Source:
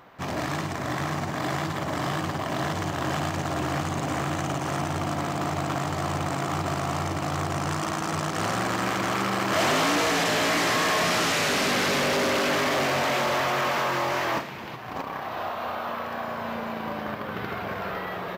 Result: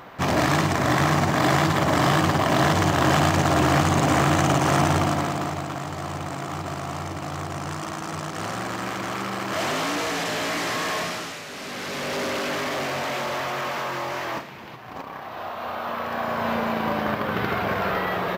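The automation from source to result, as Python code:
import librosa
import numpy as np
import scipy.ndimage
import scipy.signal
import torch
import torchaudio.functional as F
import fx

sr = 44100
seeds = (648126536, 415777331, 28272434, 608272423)

y = fx.gain(x, sr, db=fx.line((4.91, 8.5), (5.7, -3.0), (10.98, -3.0), (11.45, -13.5), (12.19, -3.0), (15.32, -3.0), (16.48, 7.0)))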